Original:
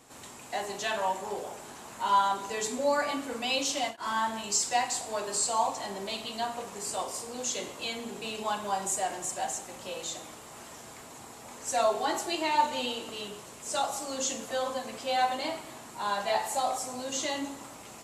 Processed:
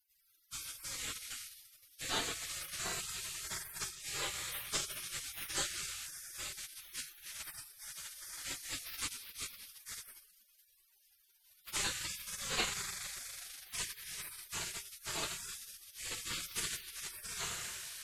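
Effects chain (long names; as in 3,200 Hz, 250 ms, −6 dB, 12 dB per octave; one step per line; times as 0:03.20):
feedback delay network reverb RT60 3.8 s, high-frequency decay 0.35×, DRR 9 dB
harmonic generator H 6 −33 dB, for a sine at −11.5 dBFS
gate on every frequency bin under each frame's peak −30 dB weak
level +7.5 dB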